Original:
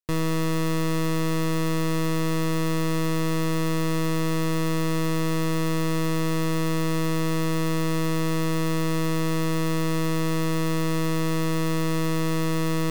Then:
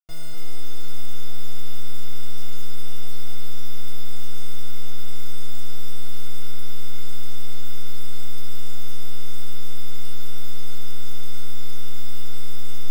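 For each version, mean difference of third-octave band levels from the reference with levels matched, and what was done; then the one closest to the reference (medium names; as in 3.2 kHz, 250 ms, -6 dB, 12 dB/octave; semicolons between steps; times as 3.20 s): 6.0 dB: modulation noise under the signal 22 dB; feedback comb 710 Hz, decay 0.35 s, mix 100%; echo whose repeats swap between lows and highs 252 ms, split 1.7 kHz, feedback 53%, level -2 dB; trim +13 dB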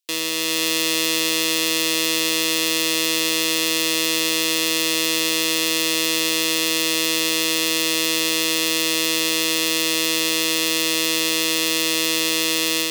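8.5 dB: high-pass 280 Hz 24 dB/octave; resonant high shelf 2 kHz +13.5 dB, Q 1.5; level rider; trim -2 dB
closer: first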